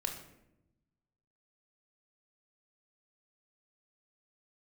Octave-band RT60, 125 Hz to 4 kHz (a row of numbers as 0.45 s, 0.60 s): 1.6 s, 1.3 s, 1.0 s, 0.70 s, 0.70 s, 0.50 s